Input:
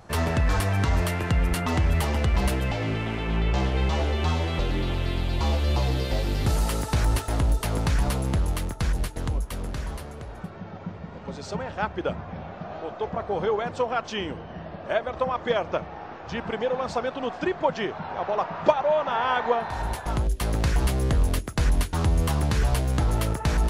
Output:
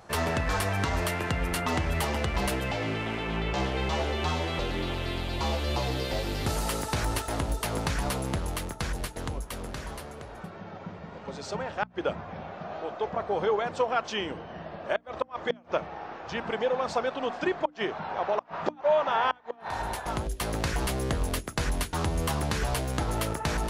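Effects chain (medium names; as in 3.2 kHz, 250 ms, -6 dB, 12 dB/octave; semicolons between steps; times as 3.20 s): inverted gate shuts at -13 dBFS, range -31 dB; bass shelf 170 Hz -9 dB; hum notches 60/120/180/240/300 Hz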